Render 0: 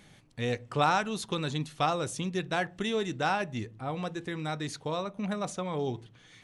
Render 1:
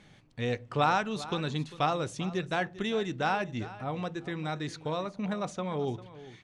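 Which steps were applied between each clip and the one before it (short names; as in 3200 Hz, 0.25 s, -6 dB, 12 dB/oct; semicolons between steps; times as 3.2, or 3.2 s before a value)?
air absorption 68 m; echo 0.397 s -16.5 dB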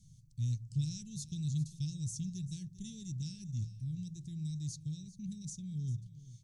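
Chebyshev band-stop 140–6000 Hz, order 3; gain +3.5 dB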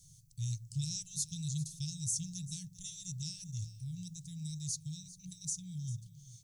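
pre-emphasis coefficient 0.8; FFT band-reject 190–890 Hz; gain +11 dB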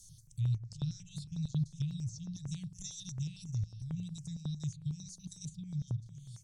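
treble ducked by the level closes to 2200 Hz, closed at -35.5 dBFS; step phaser 11 Hz 510–6300 Hz; gain +6 dB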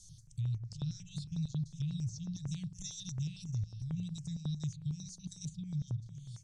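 LPF 7200 Hz 12 dB/oct; limiter -31.5 dBFS, peak gain reduction 7 dB; gain +2 dB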